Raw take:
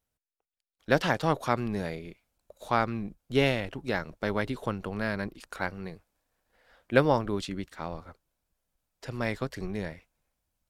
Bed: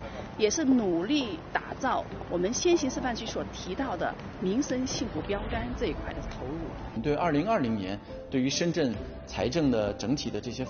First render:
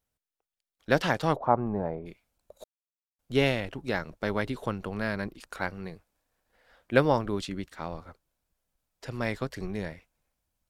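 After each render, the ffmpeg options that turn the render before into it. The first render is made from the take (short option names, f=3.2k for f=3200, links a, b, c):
-filter_complex "[0:a]asplit=3[a][b][c];[a]afade=t=out:st=1.35:d=0.02[d];[b]lowpass=f=850:t=q:w=2.5,afade=t=in:st=1.35:d=0.02,afade=t=out:st=2.05:d=0.02[e];[c]afade=t=in:st=2.05:d=0.02[f];[d][e][f]amix=inputs=3:normalize=0,asplit=3[g][h][i];[g]atrim=end=2.64,asetpts=PTS-STARTPTS,afade=t=out:st=2.636:d=0.004:c=hsin[j];[h]atrim=start=2.64:end=3.19,asetpts=PTS-STARTPTS,volume=0[k];[i]atrim=start=3.19,asetpts=PTS-STARTPTS,afade=t=in:d=0.004:c=hsin[l];[j][k][l]concat=n=3:v=0:a=1"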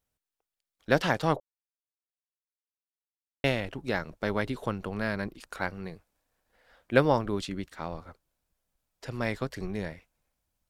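-filter_complex "[0:a]asplit=3[a][b][c];[a]atrim=end=1.4,asetpts=PTS-STARTPTS,afade=t=out:st=1.396:d=0.004:c=hsin[d];[b]atrim=start=1.4:end=3.44,asetpts=PTS-STARTPTS,volume=0[e];[c]atrim=start=3.44,asetpts=PTS-STARTPTS,afade=t=in:d=0.004:c=hsin[f];[d][e][f]concat=n=3:v=0:a=1"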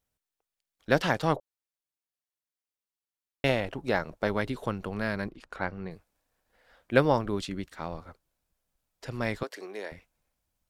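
-filter_complex "[0:a]asettb=1/sr,asplit=3[a][b][c];[a]atrim=end=3.494[d];[b]atrim=start=3.49:end=4.28,asetpts=PTS-STARTPTS,afade=t=in:d=0.004:c=qsin,afade=t=out:st=0.786:d=0.004:c=qsin,equalizer=f=710:t=o:w=1.7:g=5[e];[c]atrim=start=4.276[f];[d][e]acrossfade=d=0.004:c1=hsin:c2=qsin[g];[g][f]acrossfade=d=0.004:c1=qsin:c2=hsin,asettb=1/sr,asplit=3[h][i][j];[h]atrim=end=5.294[k];[i]atrim=start=5.29:end=5.91,asetpts=PTS-STARTPTS,afade=t=in:d=0.004:c=qsin,afade=t=out:st=0.616:d=0.004:c=qsin,aemphasis=mode=reproduction:type=75fm[l];[j]atrim=start=5.906[m];[k][l]acrossfade=d=0.004:c1=hsin:c2=qsin[n];[n][m]acrossfade=d=0.004:c1=qsin:c2=hsin,asettb=1/sr,asplit=3[o][p][q];[o]atrim=end=9.434[r];[p]atrim=start=9.43:end=9.92,asetpts=PTS-STARTPTS,afade=t=in:d=0.004:c=qsin,afade=t=out:st=0.486:d=0.004:c=qsin,highpass=f=350:w=0.5412,highpass=f=350:w=1.3066[s];[q]atrim=start=9.916[t];[r][s]acrossfade=d=0.004:c1=hsin:c2=qsin[u];[u][t]acrossfade=d=0.004:c1=qsin:c2=hsin"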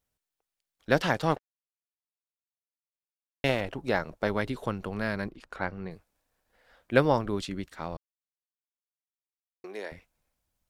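-filter_complex "[0:a]asettb=1/sr,asplit=3[a][b][c];[a]atrim=end=1.314[d];[b]atrim=start=1.31:end=3.61,asetpts=PTS-STARTPTS,afade=t=in:d=0.004:c=qsin,afade=t=out:st=2.296:d=0.004:c=qsin,aeval=exprs='sgn(val(0))*max(abs(val(0))-0.00891,0)':c=same[e];[c]atrim=start=3.606[f];[d][e]acrossfade=d=0.004:c1=hsin:c2=qsin[g];[g][f]acrossfade=d=0.004:c1=qsin:c2=hsin,asplit=3[h][i][j];[h]atrim=end=7.97,asetpts=PTS-STARTPTS,afade=t=out:st=7.966:d=0.004:c=hsin[k];[i]atrim=start=7.97:end=9.64,asetpts=PTS-STARTPTS,volume=0[l];[j]atrim=start=9.64,asetpts=PTS-STARTPTS,afade=t=in:d=0.004:c=hsin[m];[k][l][m]concat=n=3:v=0:a=1"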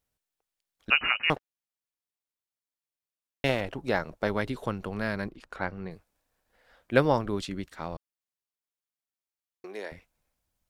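-filter_complex "[0:a]asettb=1/sr,asplit=3[a][b][c];[a]atrim=end=0.904[d];[b]atrim=start=0.9:end=1.3,asetpts=PTS-STARTPTS,afade=t=in:d=0.004:c=qsin,afade=t=out:st=0.396:d=0.004:c=qsin,lowpass=f=2.6k:t=q:w=0.5098,lowpass=f=2.6k:t=q:w=0.6013,lowpass=f=2.6k:t=q:w=0.9,lowpass=f=2.6k:t=q:w=2.563,afreqshift=-3000[e];[c]atrim=start=1.296[f];[d][e]acrossfade=d=0.004:c1=hsin:c2=qsin[g];[g][f]acrossfade=d=0.004:c1=qsin:c2=hsin"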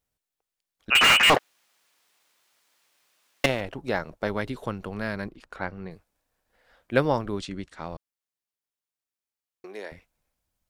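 -filter_complex "[0:a]asettb=1/sr,asplit=3[a][b][c];[a]atrim=end=0.954[d];[b]atrim=start=0.95:end=3.46,asetpts=PTS-STARTPTS,afade=t=in:d=0.004:c=qsin,afade=t=out:st=2.506:d=0.004:c=qsin,asplit=2[e][f];[f]highpass=f=720:p=1,volume=37dB,asoftclip=type=tanh:threshold=-9dB[g];[e][g]amix=inputs=2:normalize=0,lowpass=f=4k:p=1,volume=-6dB[h];[c]atrim=start=3.456[i];[d][h]acrossfade=d=0.004:c1=hsin:c2=qsin[j];[j][i]acrossfade=d=0.004:c1=qsin:c2=hsin,asettb=1/sr,asplit=3[k][l][m];[k]atrim=end=7.374[n];[l]atrim=start=7.37:end=7.86,asetpts=PTS-STARTPTS,afade=t=in:d=0.004:c=qsin,afade=t=out:st=0.486:d=0.004:c=qsin,lowpass=f=9.6k:w=0.5412,lowpass=f=9.6k:w=1.3066[o];[m]atrim=start=7.856[p];[n][o]acrossfade=d=0.004:c1=hsin:c2=qsin[q];[q][p]acrossfade=d=0.004:c1=qsin:c2=hsin"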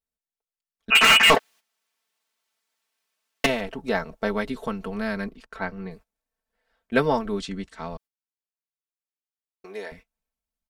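-af "agate=range=-13dB:threshold=-49dB:ratio=16:detection=peak,aecho=1:1:4.5:0.82"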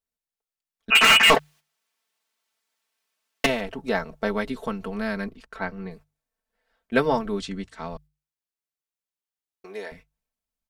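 -af "bandreject=f=50:t=h:w=6,bandreject=f=100:t=h:w=6,bandreject=f=150:t=h:w=6"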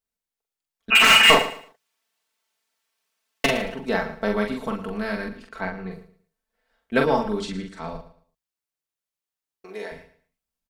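-filter_complex "[0:a]asplit=2[a][b];[b]adelay=43,volume=-4dB[c];[a][c]amix=inputs=2:normalize=0,aecho=1:1:112|224|336:0.2|0.0499|0.0125"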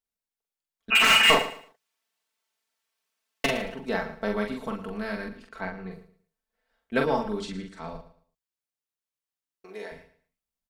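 -af "volume=-4.5dB"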